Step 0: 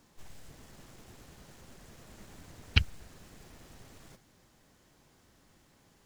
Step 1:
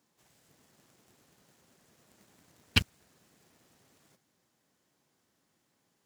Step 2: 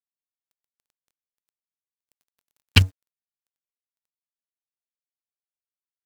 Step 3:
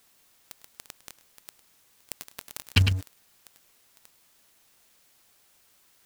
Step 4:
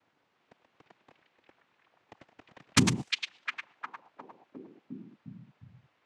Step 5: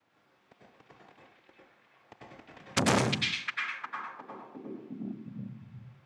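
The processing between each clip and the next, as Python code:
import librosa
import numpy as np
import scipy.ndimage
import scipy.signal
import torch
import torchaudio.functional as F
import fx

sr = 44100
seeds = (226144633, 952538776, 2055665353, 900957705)

y1 = scipy.signal.sosfilt(scipy.signal.butter(2, 140.0, 'highpass', fs=sr, output='sos'), x)
y1 = fx.high_shelf(y1, sr, hz=5800.0, db=4.0)
y1 = fx.leveller(y1, sr, passes=3)
y1 = F.gain(torch.from_numpy(y1), -5.0).numpy()
y2 = fx.peak_eq(y1, sr, hz=94.0, db=11.5, octaves=0.32)
y2 = np.sign(y2) * np.maximum(np.abs(y2) - 10.0 ** (-48.0 / 20.0), 0.0)
y2 = F.gain(torch.from_numpy(y2), 7.5).numpy()
y3 = y2 + 10.0 ** (-18.0 / 20.0) * np.pad(y2, (int(104 * sr / 1000.0), 0))[:len(y2)]
y3 = fx.env_flatten(y3, sr, amount_pct=70)
y3 = F.gain(torch.from_numpy(y3), -6.5).numpy()
y4 = fx.noise_vocoder(y3, sr, seeds[0], bands=4)
y4 = fx.env_lowpass(y4, sr, base_hz=1700.0, full_db=-29.5)
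y4 = fx.echo_stepped(y4, sr, ms=355, hz=3000.0, octaves=-0.7, feedback_pct=70, wet_db=-1.0)
y5 = fx.rev_plate(y4, sr, seeds[1], rt60_s=0.61, hf_ratio=0.6, predelay_ms=85, drr_db=-4.0)
y5 = fx.transformer_sat(y5, sr, knee_hz=2000.0)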